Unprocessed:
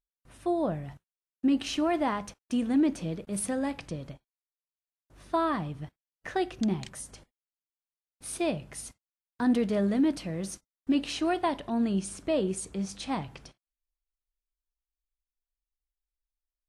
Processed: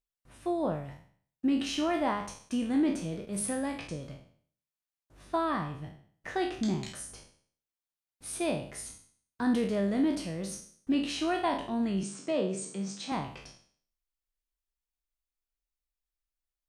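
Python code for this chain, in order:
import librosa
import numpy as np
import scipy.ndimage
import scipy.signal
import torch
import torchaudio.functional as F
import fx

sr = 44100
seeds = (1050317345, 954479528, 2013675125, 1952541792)

y = fx.spec_trails(x, sr, decay_s=0.52)
y = fx.cheby1_bandpass(y, sr, low_hz=130.0, high_hz=8500.0, order=5, at=(12.03, 13.12))
y = y * librosa.db_to_amplitude(-3.0)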